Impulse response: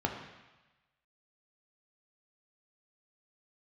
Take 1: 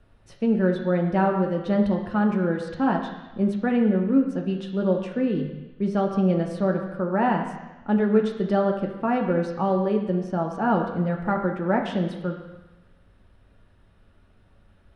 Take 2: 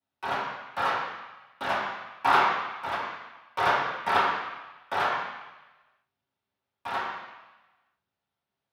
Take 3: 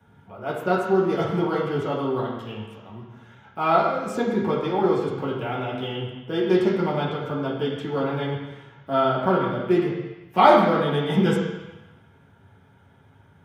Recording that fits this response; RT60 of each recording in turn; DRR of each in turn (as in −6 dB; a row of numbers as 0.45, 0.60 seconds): 1; 1.1, 1.1, 1.1 seconds; 1.5, −13.0, −6.5 decibels